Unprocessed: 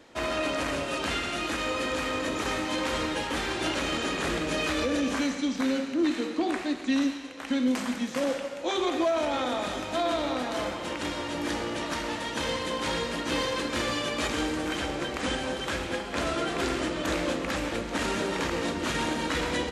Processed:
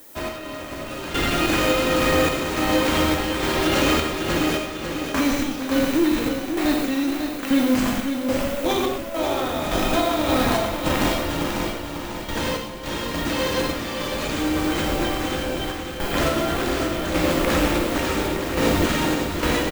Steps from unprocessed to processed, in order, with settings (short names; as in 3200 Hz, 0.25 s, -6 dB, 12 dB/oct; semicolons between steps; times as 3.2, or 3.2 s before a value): in parallel at -4 dB: Schmitt trigger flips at -26.5 dBFS; on the sum: limiter -21.5 dBFS, peak gain reduction 6 dB; added noise violet -47 dBFS; random-step tremolo, depth 90%; non-linear reverb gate 0.14 s flat, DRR 2.5 dB; AGC gain up to 5.5 dB; on a send: feedback echo 0.547 s, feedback 46%, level -7 dB; on the sum: gain +3 dB